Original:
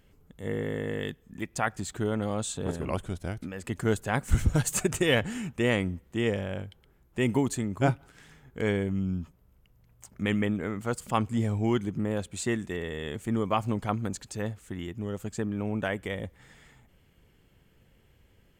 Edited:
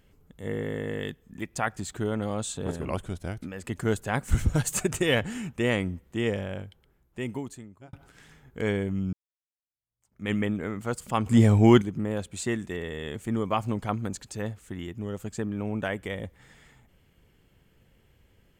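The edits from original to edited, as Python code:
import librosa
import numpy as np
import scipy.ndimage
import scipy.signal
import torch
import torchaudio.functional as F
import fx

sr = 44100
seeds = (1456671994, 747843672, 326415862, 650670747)

y = fx.edit(x, sr, fx.fade_out_span(start_s=6.42, length_s=1.51),
    fx.fade_in_span(start_s=9.13, length_s=1.18, curve='exp'),
    fx.clip_gain(start_s=11.26, length_s=0.56, db=9.5), tone=tone)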